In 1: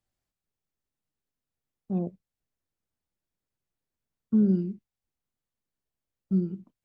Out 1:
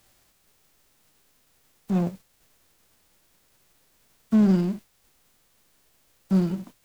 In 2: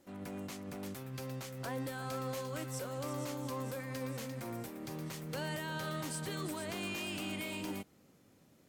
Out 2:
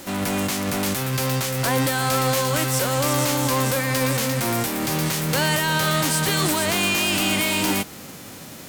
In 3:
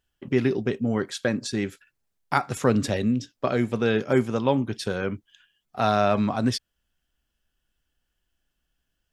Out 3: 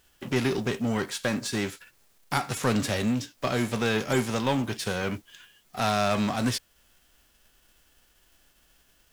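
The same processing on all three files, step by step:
spectral whitening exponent 0.6; power-law curve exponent 0.7; normalise peaks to -12 dBFS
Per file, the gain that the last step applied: +2.0, +15.5, -7.5 dB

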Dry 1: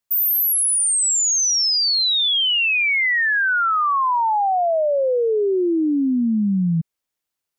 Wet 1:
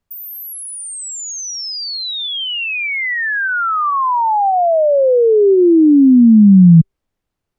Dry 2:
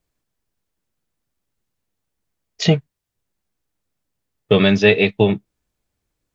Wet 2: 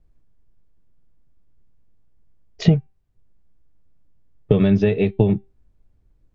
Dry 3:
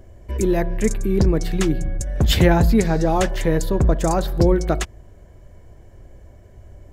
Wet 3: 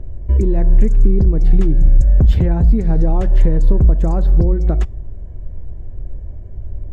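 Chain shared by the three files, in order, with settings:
resonator 390 Hz, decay 0.25 s, harmonics all, mix 30%; compressor 10:1, threshold -24 dBFS; tilt -4 dB/oct; normalise peaks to -1.5 dBFS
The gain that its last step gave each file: +10.5, +4.0, +1.5 dB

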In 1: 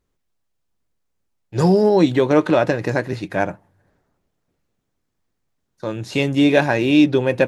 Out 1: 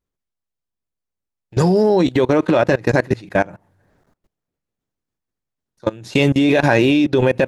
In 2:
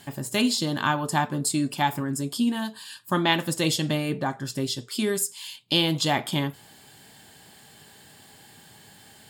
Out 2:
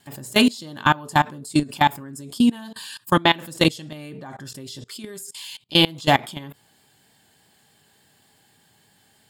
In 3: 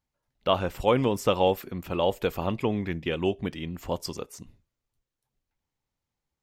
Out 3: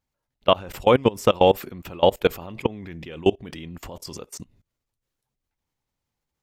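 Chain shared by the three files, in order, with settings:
limiter -10.5 dBFS; vibrato 3.4 Hz 23 cents; level quantiser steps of 23 dB; normalise peaks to -1.5 dBFS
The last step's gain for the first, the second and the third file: +9.5, +9.0, +9.5 dB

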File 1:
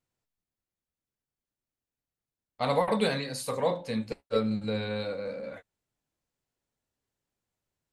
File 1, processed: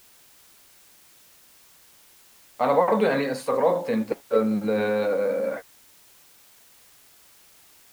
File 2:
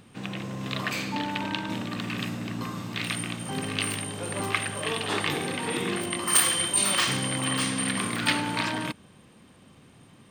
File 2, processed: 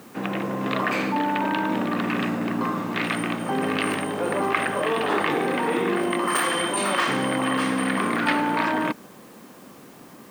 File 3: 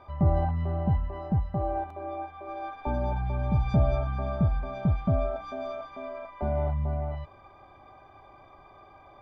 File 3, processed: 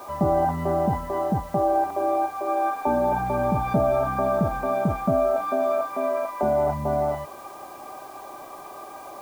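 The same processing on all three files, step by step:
three-band isolator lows -23 dB, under 200 Hz, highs -17 dB, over 2000 Hz; in parallel at -2.5 dB: negative-ratio compressor -36 dBFS, ratio -1; on the sum: requantised 10-bit, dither triangular; match loudness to -24 LUFS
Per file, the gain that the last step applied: +6.0, +6.0, +7.5 dB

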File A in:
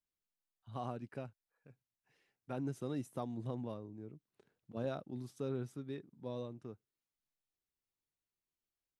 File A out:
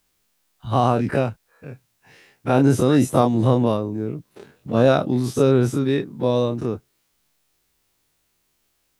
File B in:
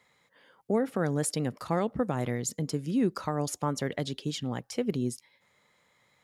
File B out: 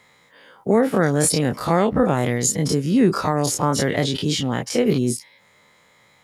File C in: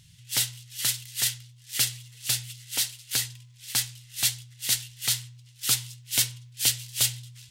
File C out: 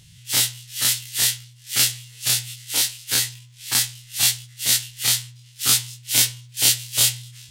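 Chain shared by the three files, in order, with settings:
spectral dilation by 60 ms; match loudness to -20 LUFS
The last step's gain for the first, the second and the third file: +21.0, +7.5, +2.0 dB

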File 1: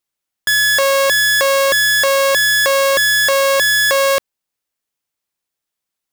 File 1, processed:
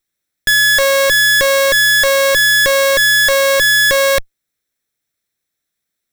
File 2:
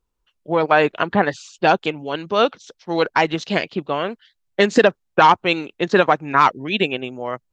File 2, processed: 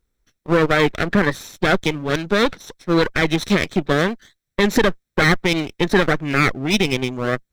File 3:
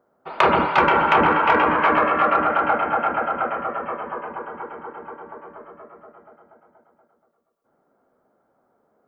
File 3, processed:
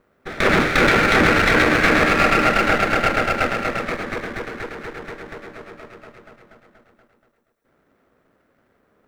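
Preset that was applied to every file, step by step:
minimum comb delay 0.53 ms; maximiser +10.5 dB; normalise peaks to -6 dBFS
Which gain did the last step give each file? -5.0, -5.0, -5.0 dB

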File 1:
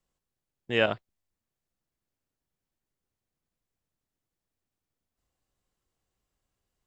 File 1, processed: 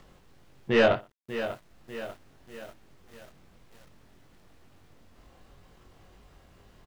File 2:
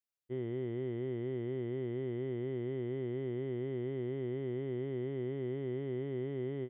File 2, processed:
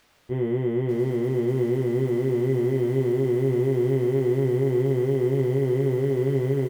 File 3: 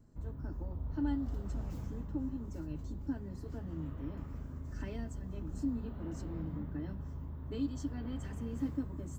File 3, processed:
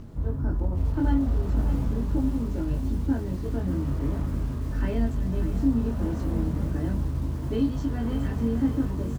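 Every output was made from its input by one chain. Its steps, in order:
feedback echo 60 ms, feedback 33%, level -22.5 dB; dynamic EQ 290 Hz, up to -5 dB, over -49 dBFS, Q 5.4; soft clip -24.5 dBFS; upward compressor, threshold -48 dBFS; LPF 4700 Hz 12 dB/oct; doubler 22 ms -3 dB; requantised 12-bit, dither none; high shelf 2500 Hz -7 dB; lo-fi delay 0.593 s, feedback 55%, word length 9-bit, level -11 dB; normalise peaks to -12 dBFS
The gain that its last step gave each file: +8.5, +13.0, +12.0 dB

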